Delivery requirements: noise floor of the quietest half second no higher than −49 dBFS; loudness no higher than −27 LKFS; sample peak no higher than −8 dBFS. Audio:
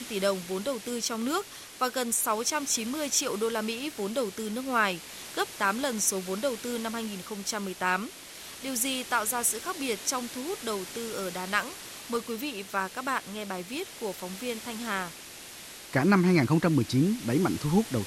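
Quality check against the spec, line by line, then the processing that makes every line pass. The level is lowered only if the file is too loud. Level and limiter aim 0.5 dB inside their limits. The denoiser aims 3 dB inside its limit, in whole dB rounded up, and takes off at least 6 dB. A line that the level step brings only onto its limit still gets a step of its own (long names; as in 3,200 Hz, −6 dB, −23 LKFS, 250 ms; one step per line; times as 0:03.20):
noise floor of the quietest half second −45 dBFS: out of spec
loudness −29.0 LKFS: in spec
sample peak −9.5 dBFS: in spec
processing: broadband denoise 7 dB, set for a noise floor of −45 dBFS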